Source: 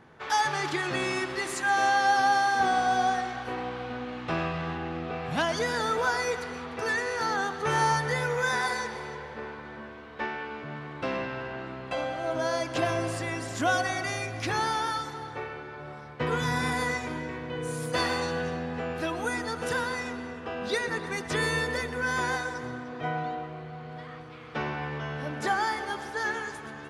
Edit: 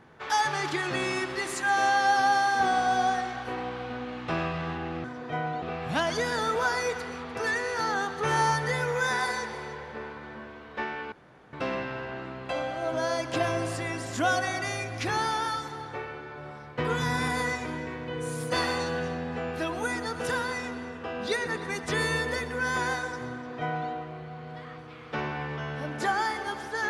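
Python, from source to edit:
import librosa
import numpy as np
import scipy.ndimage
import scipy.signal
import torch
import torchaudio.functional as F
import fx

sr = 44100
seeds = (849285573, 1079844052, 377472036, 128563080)

y = fx.edit(x, sr, fx.room_tone_fill(start_s=10.54, length_s=0.41),
    fx.duplicate(start_s=22.75, length_s=0.58, to_s=5.04), tone=tone)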